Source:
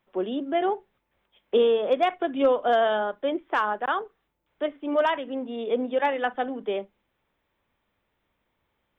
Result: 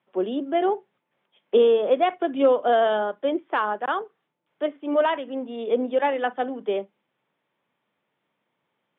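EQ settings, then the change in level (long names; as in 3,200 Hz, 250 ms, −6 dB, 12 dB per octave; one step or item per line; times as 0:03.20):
elliptic band-pass filter 140–3,400 Hz
dynamic equaliser 360 Hz, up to +4 dB, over −31 dBFS, Q 0.79
0.0 dB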